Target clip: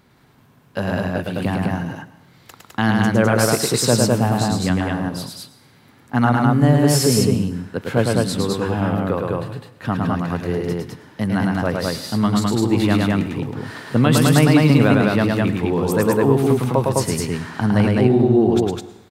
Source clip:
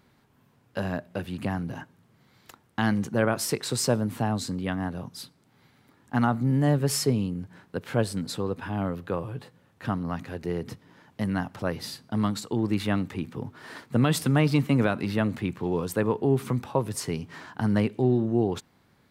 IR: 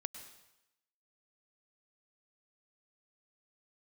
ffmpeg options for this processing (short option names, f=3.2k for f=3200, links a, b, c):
-filter_complex "[0:a]aecho=1:1:107.9|207:0.708|0.794,asplit=2[a][b];[1:a]atrim=start_sample=2205[c];[b][c]afir=irnorm=-1:irlink=0,volume=-0.5dB[d];[a][d]amix=inputs=2:normalize=0,volume=1.5dB"